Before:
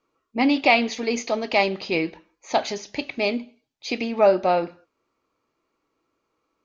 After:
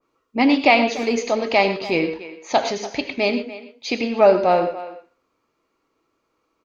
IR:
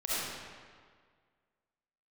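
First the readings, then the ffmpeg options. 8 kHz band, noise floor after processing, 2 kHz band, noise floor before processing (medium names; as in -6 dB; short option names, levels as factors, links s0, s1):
no reading, -72 dBFS, +2.5 dB, -77 dBFS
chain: -filter_complex "[0:a]asplit=2[s0][s1];[s1]adelay=290,highpass=300,lowpass=3400,asoftclip=type=hard:threshold=0.237,volume=0.178[s2];[s0][s2]amix=inputs=2:normalize=0,asplit=2[s3][s4];[1:a]atrim=start_sample=2205,atrim=end_sample=4410,asetrate=32634,aresample=44100[s5];[s4][s5]afir=irnorm=-1:irlink=0,volume=0.251[s6];[s3][s6]amix=inputs=2:normalize=0,adynamicequalizer=threshold=0.0251:dfrequency=2100:dqfactor=0.7:tfrequency=2100:tqfactor=0.7:attack=5:release=100:ratio=0.375:range=2.5:mode=cutabove:tftype=highshelf,volume=1.19"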